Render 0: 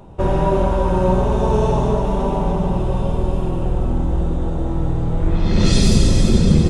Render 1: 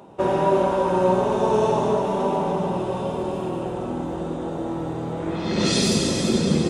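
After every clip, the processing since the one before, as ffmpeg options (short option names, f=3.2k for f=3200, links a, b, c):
-af "highpass=240"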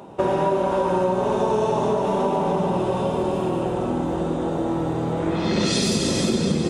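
-af "acompressor=threshold=-22dB:ratio=6,volume=4.5dB"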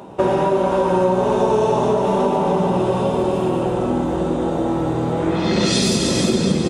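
-filter_complex "[0:a]asplit=2[a][b];[b]adelay=16,volume=-12.5dB[c];[a][c]amix=inputs=2:normalize=0,volume=3.5dB"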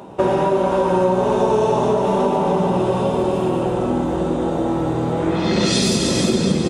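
-af anull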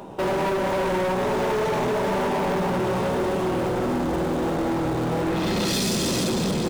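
-filter_complex "[0:a]asplit=2[a][b];[b]acrusher=bits=5:dc=4:mix=0:aa=0.000001,volume=-12dB[c];[a][c]amix=inputs=2:normalize=0,volume=19dB,asoftclip=hard,volume=-19dB,volume=-2.5dB"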